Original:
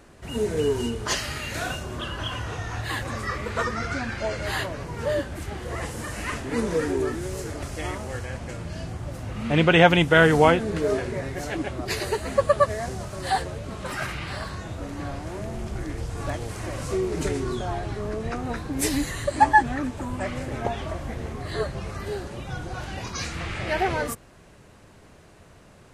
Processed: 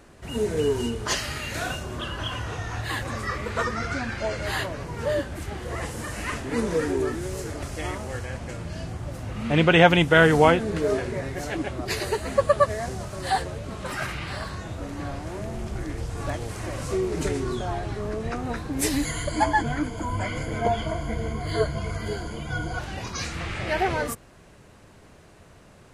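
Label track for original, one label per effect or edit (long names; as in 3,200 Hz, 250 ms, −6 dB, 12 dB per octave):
19.050000	22.790000	EQ curve with evenly spaced ripples crests per octave 1.8, crest to trough 16 dB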